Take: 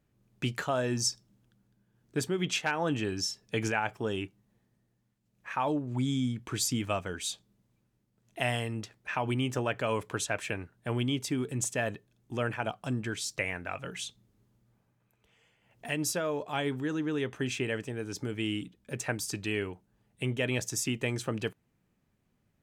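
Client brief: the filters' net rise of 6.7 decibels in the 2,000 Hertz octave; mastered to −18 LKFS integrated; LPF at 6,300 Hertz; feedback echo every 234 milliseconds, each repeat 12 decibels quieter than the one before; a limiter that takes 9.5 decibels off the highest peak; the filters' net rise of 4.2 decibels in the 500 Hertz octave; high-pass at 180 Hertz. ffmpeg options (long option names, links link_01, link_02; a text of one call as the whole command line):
ffmpeg -i in.wav -af "highpass=180,lowpass=6300,equalizer=frequency=500:width_type=o:gain=5,equalizer=frequency=2000:width_type=o:gain=8.5,alimiter=limit=-19dB:level=0:latency=1,aecho=1:1:234|468|702:0.251|0.0628|0.0157,volume=14dB" out.wav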